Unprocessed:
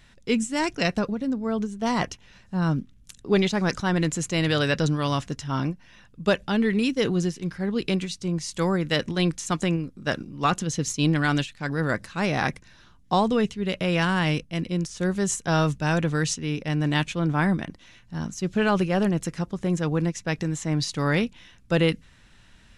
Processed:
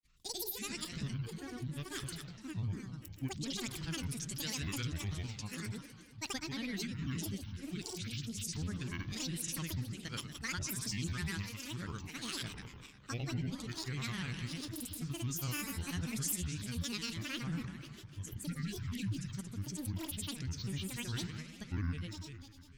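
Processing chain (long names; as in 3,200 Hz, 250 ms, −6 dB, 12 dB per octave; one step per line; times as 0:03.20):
healed spectral selection 0:18.52–0:19.32, 270–1,600 Hz both
on a send: echo machine with several playback heads 92 ms, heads first and second, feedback 63%, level −12 dB
on the sum: granular cloud, pitch spread up and down by 12 semitones
guitar amp tone stack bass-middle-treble 6-0-2
in parallel at +2 dB: brickwall limiter −36 dBFS, peak gain reduction 10 dB
on the sum: high-shelf EQ 4,600 Hz +7.5 dB
downward expander −58 dBFS
level −3 dB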